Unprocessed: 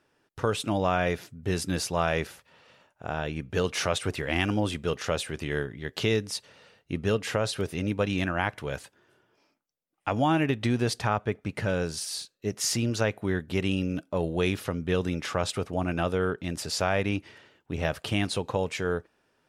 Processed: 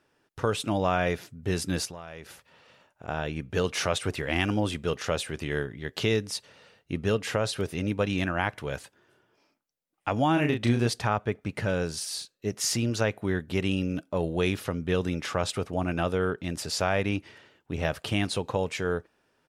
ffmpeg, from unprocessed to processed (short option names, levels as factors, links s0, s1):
-filter_complex "[0:a]asettb=1/sr,asplit=3[s0][s1][s2];[s0]atrim=end=1.854[s3];[s1]atrim=start=1.85:end=3.08,asetpts=PTS-STARTPTS,afade=t=in:d=0.004:c=qsin,afade=t=out:st=1.226:d=0.004:c=qsin,acompressor=threshold=0.0126:ratio=6:attack=3.2:release=140:knee=1:detection=peak[s4];[s2]atrim=start=3.076[s5];[s3][s4]acrossfade=d=0.004:c1=hsin:c2=qsin[s6];[s6][s5]acrossfade=d=0.004:c1=qsin:c2=hsin,asplit=3[s7][s8][s9];[s7]afade=t=out:st=10.36:d=0.02[s10];[s8]asplit=2[s11][s12];[s12]adelay=34,volume=0.562[s13];[s11][s13]amix=inputs=2:normalize=0,afade=t=in:st=10.36:d=0.02,afade=t=out:st=10.86:d=0.02[s14];[s9]afade=t=in:st=10.86:d=0.02[s15];[s10][s14][s15]amix=inputs=3:normalize=0"